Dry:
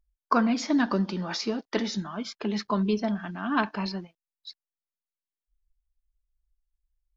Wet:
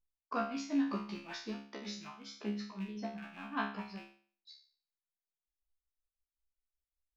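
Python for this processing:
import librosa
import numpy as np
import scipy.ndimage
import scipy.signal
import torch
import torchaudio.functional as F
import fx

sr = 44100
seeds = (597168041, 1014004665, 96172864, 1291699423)

y = fx.rattle_buzz(x, sr, strikes_db=-41.0, level_db=-29.0)
y = y * (1.0 - 0.91 / 2.0 + 0.91 / 2.0 * np.cos(2.0 * np.pi * 5.3 * (np.arange(len(y)) / sr)))
y = fx.comb_fb(y, sr, f0_hz=69.0, decay_s=0.46, harmonics='all', damping=0.0, mix_pct=100)
y = F.gain(torch.from_numpy(y), 1.5).numpy()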